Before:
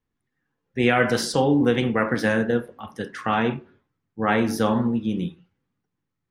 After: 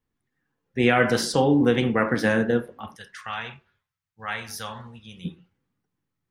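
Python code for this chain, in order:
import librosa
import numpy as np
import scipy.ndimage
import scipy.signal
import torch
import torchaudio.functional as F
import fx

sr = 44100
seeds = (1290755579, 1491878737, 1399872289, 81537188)

y = fx.tone_stack(x, sr, knobs='10-0-10', at=(2.95, 5.24), fade=0.02)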